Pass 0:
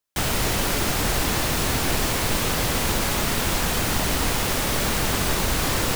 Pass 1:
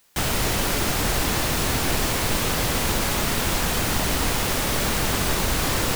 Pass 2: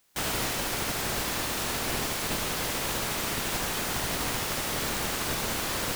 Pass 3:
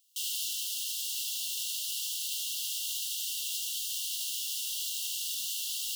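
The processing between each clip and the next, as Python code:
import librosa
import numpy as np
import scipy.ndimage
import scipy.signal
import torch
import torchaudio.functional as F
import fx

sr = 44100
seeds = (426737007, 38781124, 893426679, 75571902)

y1 = fx.quant_dither(x, sr, seeds[0], bits=10, dither='triangular')
y2 = fx.spec_clip(y1, sr, under_db=12)
y2 = y2 + 10.0 ** (-5.5 / 20.0) * np.pad(y2, (int(76 * sr / 1000.0), 0))[:len(y2)]
y2 = fx.rider(y2, sr, range_db=10, speed_s=0.5)
y2 = y2 * librosa.db_to_amplitude(-9.0)
y3 = fx.brickwall_highpass(y2, sr, low_hz=2700.0)
y3 = y3 * librosa.db_to_amplitude(-1.0)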